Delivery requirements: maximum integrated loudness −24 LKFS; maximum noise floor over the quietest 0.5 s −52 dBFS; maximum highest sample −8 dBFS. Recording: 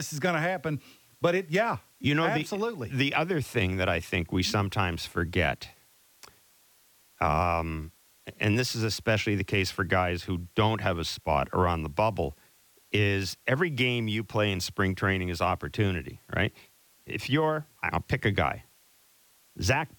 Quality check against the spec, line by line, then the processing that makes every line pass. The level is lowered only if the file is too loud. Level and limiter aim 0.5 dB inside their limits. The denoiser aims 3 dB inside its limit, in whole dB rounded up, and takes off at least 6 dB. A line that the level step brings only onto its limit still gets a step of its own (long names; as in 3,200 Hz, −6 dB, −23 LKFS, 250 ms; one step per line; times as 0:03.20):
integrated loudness −28.0 LKFS: in spec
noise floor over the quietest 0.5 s −62 dBFS: in spec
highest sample −12.0 dBFS: in spec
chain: no processing needed